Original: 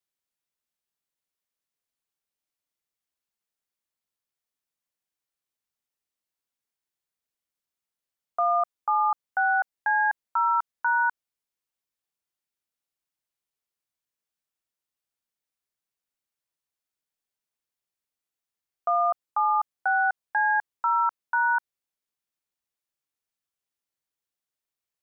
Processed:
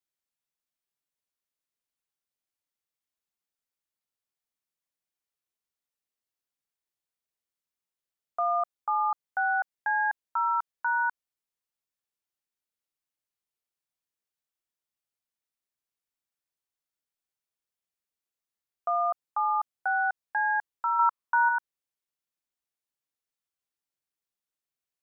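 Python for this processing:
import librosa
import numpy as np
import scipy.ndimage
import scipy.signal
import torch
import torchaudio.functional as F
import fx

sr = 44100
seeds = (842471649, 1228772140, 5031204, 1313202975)

y = fx.peak_eq(x, sr, hz=1100.0, db=9.0, octaves=0.55, at=(20.99, 21.49))
y = y * 10.0 ** (-3.5 / 20.0)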